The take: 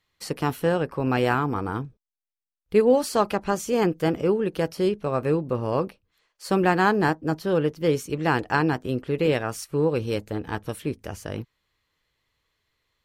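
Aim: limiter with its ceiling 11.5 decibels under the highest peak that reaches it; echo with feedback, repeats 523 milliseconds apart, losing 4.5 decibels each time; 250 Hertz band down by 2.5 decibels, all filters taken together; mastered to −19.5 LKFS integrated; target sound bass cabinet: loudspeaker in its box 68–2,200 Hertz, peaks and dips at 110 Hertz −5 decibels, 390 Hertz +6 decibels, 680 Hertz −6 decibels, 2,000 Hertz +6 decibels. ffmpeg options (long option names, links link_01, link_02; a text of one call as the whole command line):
ffmpeg -i in.wav -af "equalizer=frequency=250:width_type=o:gain=-6,alimiter=limit=-19.5dB:level=0:latency=1,highpass=frequency=68:width=0.5412,highpass=frequency=68:width=1.3066,equalizer=frequency=110:width_type=q:width=4:gain=-5,equalizer=frequency=390:width_type=q:width=4:gain=6,equalizer=frequency=680:width_type=q:width=4:gain=-6,equalizer=frequency=2000:width_type=q:width=4:gain=6,lowpass=frequency=2200:width=0.5412,lowpass=frequency=2200:width=1.3066,aecho=1:1:523|1046|1569|2092|2615|3138|3661|4184|4707:0.596|0.357|0.214|0.129|0.0772|0.0463|0.0278|0.0167|0.01,volume=8.5dB" out.wav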